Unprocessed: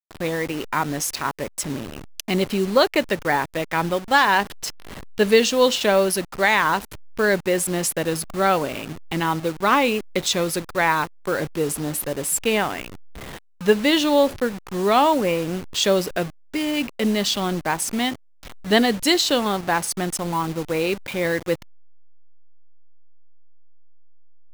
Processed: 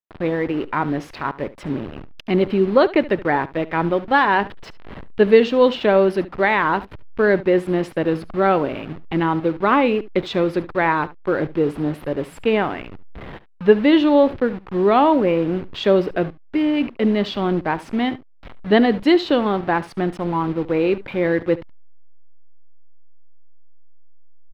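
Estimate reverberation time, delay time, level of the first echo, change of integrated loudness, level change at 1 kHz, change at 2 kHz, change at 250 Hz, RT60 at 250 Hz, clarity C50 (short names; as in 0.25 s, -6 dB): none, 72 ms, -18.0 dB, +2.0 dB, +1.0 dB, -1.0 dB, +5.0 dB, none, none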